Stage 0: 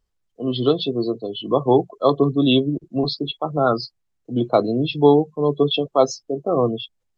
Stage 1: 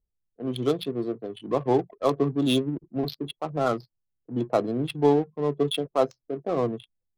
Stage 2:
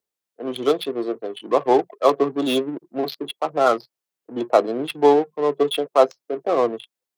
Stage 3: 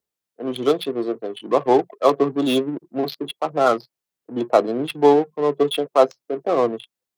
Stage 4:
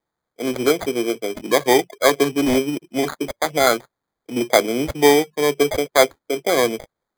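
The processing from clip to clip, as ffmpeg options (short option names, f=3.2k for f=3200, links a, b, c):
-af "adynamicsmooth=sensitivity=2.5:basefreq=570,volume=-6.5dB"
-filter_complex "[0:a]highpass=430,acrossover=split=680|2000[a][b][c];[c]asoftclip=type=tanh:threshold=-33.5dB[d];[a][b][d]amix=inputs=3:normalize=0,volume=9dB"
-af "bass=f=250:g=6,treble=f=4k:g=0"
-filter_complex "[0:a]asplit=2[a][b];[b]acompressor=threshold=-24dB:ratio=6,volume=-2dB[c];[a][c]amix=inputs=2:normalize=0,acrusher=samples=16:mix=1:aa=0.000001,volume=-1dB"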